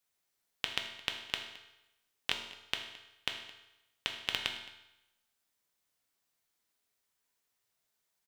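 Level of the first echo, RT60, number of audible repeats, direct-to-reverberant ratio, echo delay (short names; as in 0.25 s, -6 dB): -20.0 dB, 0.90 s, 1, 2.5 dB, 0.217 s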